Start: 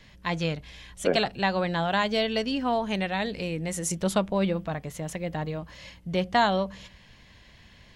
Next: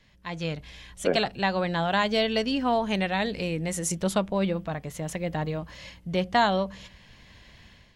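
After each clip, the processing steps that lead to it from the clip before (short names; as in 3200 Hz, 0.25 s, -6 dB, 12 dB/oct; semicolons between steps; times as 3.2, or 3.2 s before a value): AGC gain up to 10 dB; gain -8 dB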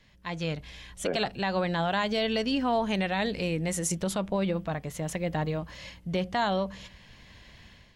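limiter -18 dBFS, peak gain reduction 7.5 dB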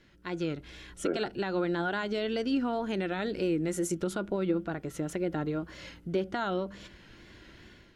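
compressor 1.5:1, threshold -38 dBFS, peak gain reduction 6 dB; small resonant body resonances 340/1400 Hz, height 16 dB, ringing for 35 ms; wow and flutter 58 cents; gain -3 dB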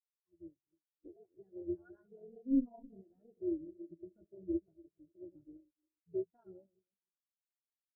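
regenerating reverse delay 0.151 s, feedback 66%, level -7.5 dB; AM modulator 260 Hz, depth 95%; spectral expander 4:1; gain -4.5 dB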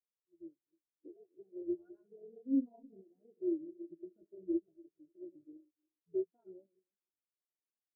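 band-pass 370 Hz, Q 1.6; gain +2 dB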